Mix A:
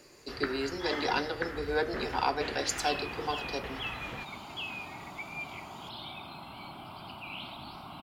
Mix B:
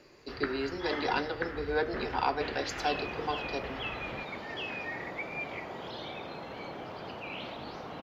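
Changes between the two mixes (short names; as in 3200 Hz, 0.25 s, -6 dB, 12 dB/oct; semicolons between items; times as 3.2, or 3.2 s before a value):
second sound: remove fixed phaser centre 1800 Hz, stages 6; master: add running mean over 5 samples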